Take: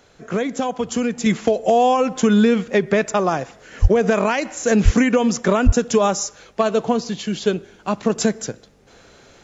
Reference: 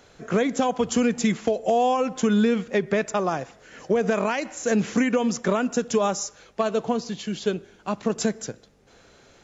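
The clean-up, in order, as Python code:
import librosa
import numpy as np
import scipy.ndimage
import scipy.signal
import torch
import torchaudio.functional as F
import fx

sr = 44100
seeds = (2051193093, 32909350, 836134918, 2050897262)

y = fx.fix_deplosive(x, sr, at_s=(3.81, 4.84, 5.65))
y = fx.gain(y, sr, db=fx.steps((0.0, 0.0), (1.26, -5.5)))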